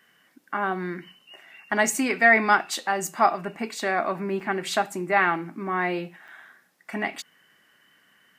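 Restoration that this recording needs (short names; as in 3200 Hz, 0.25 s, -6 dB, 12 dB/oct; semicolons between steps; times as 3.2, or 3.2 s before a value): interpolate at 4.4/6.28, 4.2 ms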